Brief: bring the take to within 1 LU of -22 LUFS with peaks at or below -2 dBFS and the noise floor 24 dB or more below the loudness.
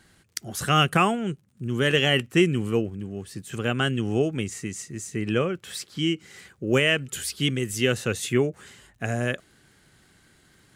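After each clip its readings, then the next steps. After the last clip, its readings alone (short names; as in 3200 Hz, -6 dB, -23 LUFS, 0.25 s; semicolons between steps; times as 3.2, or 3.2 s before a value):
ticks 50/s; loudness -25.0 LUFS; peak -8.5 dBFS; loudness target -22.0 LUFS
-> de-click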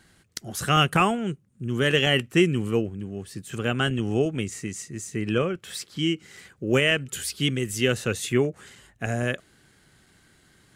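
ticks 0.28/s; loudness -25.5 LUFS; peak -8.5 dBFS; loudness target -22.0 LUFS
-> gain +3.5 dB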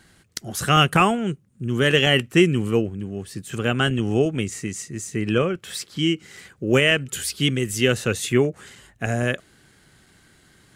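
loudness -22.0 LUFS; peak -5.0 dBFS; noise floor -57 dBFS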